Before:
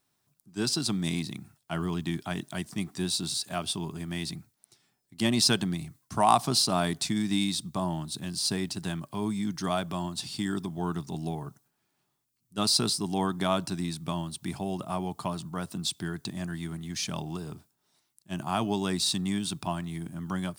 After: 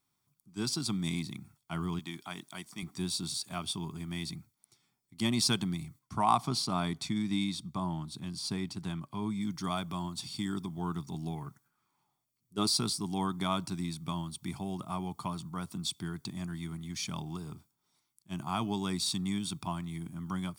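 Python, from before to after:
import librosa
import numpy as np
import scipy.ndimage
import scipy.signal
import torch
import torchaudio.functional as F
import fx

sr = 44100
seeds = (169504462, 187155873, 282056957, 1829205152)

y = fx.highpass(x, sr, hz=490.0, slope=6, at=(1.99, 2.83))
y = fx.high_shelf(y, sr, hz=5900.0, db=-9.0, at=(5.99, 9.41))
y = fx.peak_eq(y, sr, hz=fx.line((11.35, 2400.0), (12.68, 340.0)), db=13.0, octaves=0.52, at=(11.35, 12.68), fade=0.02)
y = y + 0.46 * np.pad(y, (int(0.9 * sr / 1000.0), 0))[:len(y)]
y = F.gain(torch.from_numpy(y), -5.5).numpy()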